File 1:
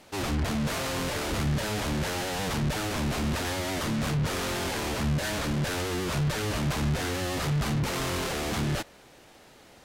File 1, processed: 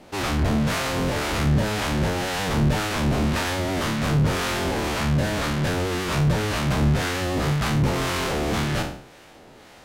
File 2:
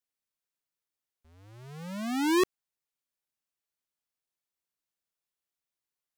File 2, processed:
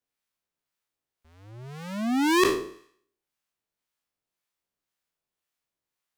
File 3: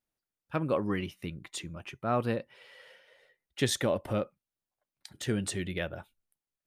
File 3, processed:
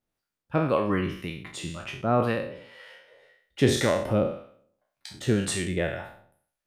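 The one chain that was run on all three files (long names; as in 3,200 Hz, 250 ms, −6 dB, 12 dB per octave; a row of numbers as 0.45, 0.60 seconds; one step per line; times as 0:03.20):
peak hold with a decay on every bin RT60 0.59 s
high-shelf EQ 3,900 Hz −6 dB
two-band tremolo in antiphase 1.9 Hz, depth 50%, crossover 790 Hz
level +7 dB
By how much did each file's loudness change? +5.5, +4.5, +6.0 LU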